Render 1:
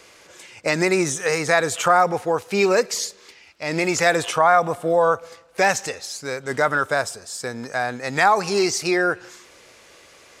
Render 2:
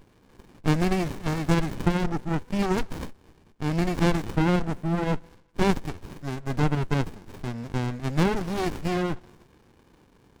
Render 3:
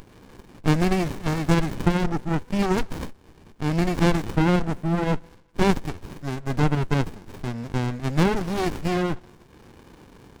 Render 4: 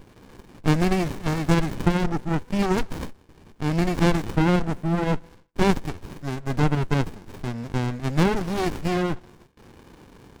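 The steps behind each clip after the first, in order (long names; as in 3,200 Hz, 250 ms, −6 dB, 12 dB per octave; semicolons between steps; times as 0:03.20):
windowed peak hold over 65 samples; level −3 dB
upward compression, threshold −42 dBFS; level +2.5 dB
noise gate with hold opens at −42 dBFS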